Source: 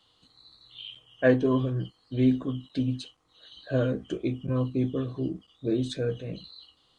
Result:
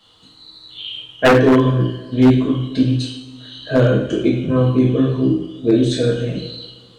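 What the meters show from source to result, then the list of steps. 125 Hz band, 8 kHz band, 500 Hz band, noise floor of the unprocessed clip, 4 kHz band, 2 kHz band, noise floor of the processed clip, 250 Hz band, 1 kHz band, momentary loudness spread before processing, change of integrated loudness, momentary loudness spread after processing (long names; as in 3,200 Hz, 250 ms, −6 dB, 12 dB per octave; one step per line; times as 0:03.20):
+12.5 dB, can't be measured, +12.0 dB, −67 dBFS, +14.0 dB, +13.0 dB, −47 dBFS, +12.0 dB, +17.0 dB, 18 LU, +12.0 dB, 16 LU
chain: coupled-rooms reverb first 0.71 s, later 2.2 s, DRR −4 dB
wave folding −12.5 dBFS
level +8 dB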